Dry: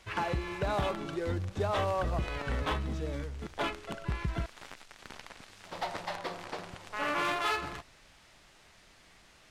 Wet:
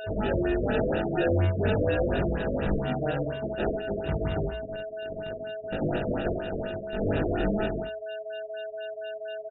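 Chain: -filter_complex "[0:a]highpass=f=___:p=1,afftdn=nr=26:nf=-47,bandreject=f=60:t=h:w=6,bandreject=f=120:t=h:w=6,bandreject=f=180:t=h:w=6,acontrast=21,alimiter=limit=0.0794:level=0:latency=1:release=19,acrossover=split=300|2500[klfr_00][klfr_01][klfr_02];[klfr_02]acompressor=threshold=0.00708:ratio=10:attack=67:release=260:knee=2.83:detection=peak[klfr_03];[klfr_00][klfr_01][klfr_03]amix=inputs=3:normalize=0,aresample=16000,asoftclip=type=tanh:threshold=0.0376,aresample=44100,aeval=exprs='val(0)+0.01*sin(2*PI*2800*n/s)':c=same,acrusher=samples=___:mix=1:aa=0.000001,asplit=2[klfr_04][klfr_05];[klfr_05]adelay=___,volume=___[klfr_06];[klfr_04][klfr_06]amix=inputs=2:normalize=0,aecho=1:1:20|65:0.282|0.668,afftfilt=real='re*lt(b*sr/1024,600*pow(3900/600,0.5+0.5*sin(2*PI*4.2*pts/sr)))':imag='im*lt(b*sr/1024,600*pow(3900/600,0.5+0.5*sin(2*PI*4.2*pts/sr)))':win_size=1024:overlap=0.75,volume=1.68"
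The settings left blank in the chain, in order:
110, 41, 20, 0.562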